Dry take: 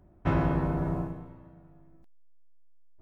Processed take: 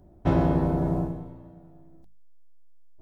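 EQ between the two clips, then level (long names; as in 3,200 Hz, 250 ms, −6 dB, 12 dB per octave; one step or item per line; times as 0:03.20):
flat-topped bell 1,700 Hz −8 dB
mains-hum notches 50/100/150/200 Hz
+5.5 dB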